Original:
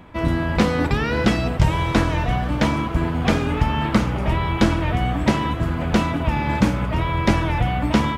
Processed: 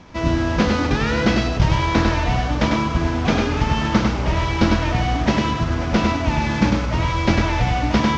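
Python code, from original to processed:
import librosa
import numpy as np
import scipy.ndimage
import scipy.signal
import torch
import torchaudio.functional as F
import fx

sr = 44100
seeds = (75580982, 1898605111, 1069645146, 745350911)

y = fx.cvsd(x, sr, bps=32000)
y = fx.high_shelf(y, sr, hz=4600.0, db=6.5)
y = y + 10.0 ** (-3.5 / 20.0) * np.pad(y, (int(100 * sr / 1000.0), 0))[:len(y)]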